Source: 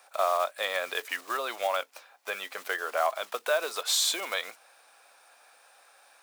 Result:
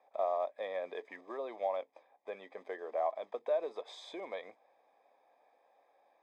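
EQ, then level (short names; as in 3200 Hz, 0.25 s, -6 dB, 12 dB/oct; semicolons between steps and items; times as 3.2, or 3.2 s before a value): running mean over 31 samples; air absorption 76 m; -1.0 dB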